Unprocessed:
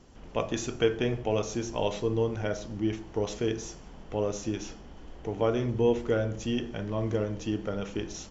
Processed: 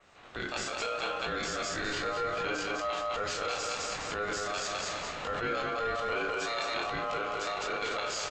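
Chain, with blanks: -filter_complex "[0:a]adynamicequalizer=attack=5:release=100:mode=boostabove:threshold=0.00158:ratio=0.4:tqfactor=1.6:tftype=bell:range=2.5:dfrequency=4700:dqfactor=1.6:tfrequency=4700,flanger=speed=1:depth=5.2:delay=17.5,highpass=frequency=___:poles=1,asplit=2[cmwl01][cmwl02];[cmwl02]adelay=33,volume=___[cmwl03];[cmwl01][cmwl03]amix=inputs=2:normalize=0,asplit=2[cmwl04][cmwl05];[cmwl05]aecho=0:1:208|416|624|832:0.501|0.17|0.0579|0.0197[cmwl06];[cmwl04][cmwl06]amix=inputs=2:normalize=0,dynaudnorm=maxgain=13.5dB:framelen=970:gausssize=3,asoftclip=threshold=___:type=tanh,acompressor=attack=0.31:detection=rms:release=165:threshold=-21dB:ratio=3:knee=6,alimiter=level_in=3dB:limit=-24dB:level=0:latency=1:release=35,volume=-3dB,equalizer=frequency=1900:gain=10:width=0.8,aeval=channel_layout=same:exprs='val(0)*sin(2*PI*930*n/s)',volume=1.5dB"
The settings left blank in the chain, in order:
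220, -7.5dB, -11dB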